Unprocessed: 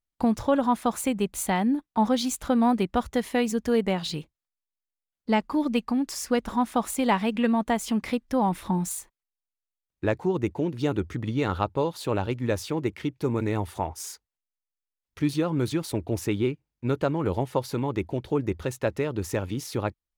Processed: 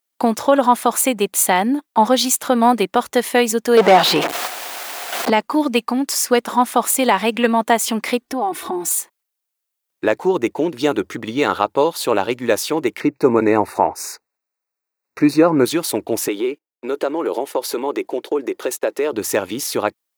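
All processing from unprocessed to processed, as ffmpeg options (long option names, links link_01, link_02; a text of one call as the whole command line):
ffmpeg -i in.wav -filter_complex "[0:a]asettb=1/sr,asplit=3[link_01][link_02][link_03];[link_01]atrim=end=3.774[link_04];[link_02]atrim=start=3.77:end=5.3,asetpts=PTS-STARTPTS,afade=type=in:duration=0.004:curve=qsin,afade=type=out:start_time=1.526:duration=0.004:curve=qsin,aeval=exprs='val(0)+0.5*0.0168*sgn(val(0))':channel_layout=same,equalizer=frequency=720:width_type=o:width=0.22:gain=8.5,asplit=2[link_05][link_06];[link_06]highpass=frequency=720:poles=1,volume=27dB,asoftclip=type=tanh:threshold=-11.5dB[link_07];[link_05][link_07]amix=inputs=2:normalize=0,lowpass=frequency=1200:poles=1,volume=-6dB[link_08];[link_03]atrim=start=5.296[link_09];[link_04][link_08]acrossfade=duration=0.004:curve1=hsin:curve2=qsin[link_10];[link_10][link_09]acrossfade=duration=0.004:curve1=qsin:curve2=hsin,asettb=1/sr,asplit=3[link_11][link_12][link_13];[link_11]atrim=end=8.214[link_14];[link_12]atrim=start=8.21:end=8.97,asetpts=PTS-STARTPTS,afade=type=in:duration=0.004:curve=qsin,afade=type=out:start_time=0.756:duration=0.004:curve=qsin,tiltshelf=frequency=740:gain=4.5,aecho=1:1:2.7:0.93,atrim=end_sample=33516,acompressor=threshold=-28dB:ratio=4:attack=3.2:release=140:knee=1:detection=peak[link_15];[link_13]atrim=start=8.966[link_16];[link_14][link_15]acrossfade=duration=0.004:curve1=hsin:curve2=qsin[link_17];[link_17][link_16]acrossfade=duration=0.004:curve1=qsin:curve2=hsin,asettb=1/sr,asplit=3[link_18][link_19][link_20];[link_18]atrim=end=13.004[link_21];[link_19]atrim=start=13:end=15.65,asetpts=PTS-STARTPTS,afade=type=in:duration=0.004:curve=qsin,afade=type=out:start_time=2.646:duration=0.004:curve=qsin,equalizer=frequency=14000:width_type=o:width=2.4:gain=-14,acontrast=33,asuperstop=centerf=3200:order=8:qfactor=3.1[link_22];[link_20]atrim=start=15.646[link_23];[link_21][link_22]acrossfade=duration=0.004:curve1=hsin:curve2=qsin[link_24];[link_24][link_23]acrossfade=duration=0.004:curve1=qsin:curve2=hsin,asettb=1/sr,asplit=3[link_25][link_26][link_27];[link_25]atrim=end=16.284[link_28];[link_26]atrim=start=16.28:end=19.13,asetpts=PTS-STARTPTS,afade=type=in:duration=0.004:curve=qsin,afade=type=out:start_time=2.846:duration=0.004:curve=qsin,agate=range=-20dB:threshold=-46dB:ratio=16:release=100:detection=peak,acompressor=threshold=-26dB:ratio=10:attack=3.2:release=140:knee=1:detection=peak,highpass=frequency=360:width_type=q:width=1.6[link_29];[link_27]atrim=start=19.126[link_30];[link_28][link_29]acrossfade=duration=0.004:curve1=hsin:curve2=qsin[link_31];[link_31][link_30]acrossfade=duration=0.004:curve1=qsin:curve2=hsin,highpass=350,highshelf=frequency=9800:gain=8,alimiter=level_in=12.5dB:limit=-1dB:release=50:level=0:latency=1,volume=-1dB" out.wav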